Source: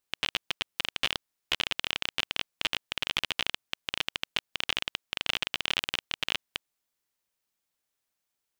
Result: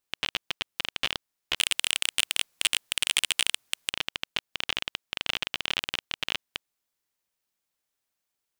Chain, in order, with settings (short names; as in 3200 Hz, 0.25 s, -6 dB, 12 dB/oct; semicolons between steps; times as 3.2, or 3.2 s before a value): 1.56–3.9 sine folder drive 9 dB, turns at -9.5 dBFS